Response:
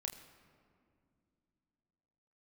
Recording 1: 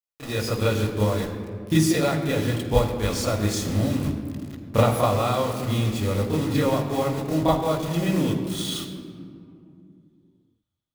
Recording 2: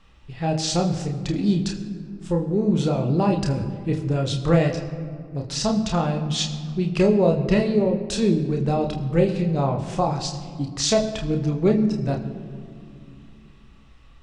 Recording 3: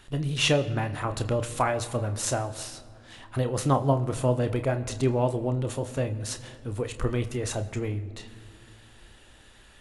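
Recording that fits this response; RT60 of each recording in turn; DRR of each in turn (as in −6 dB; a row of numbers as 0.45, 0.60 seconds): 2; 2.2 s, 2.3 s, non-exponential decay; −8.0, 1.5, 8.0 decibels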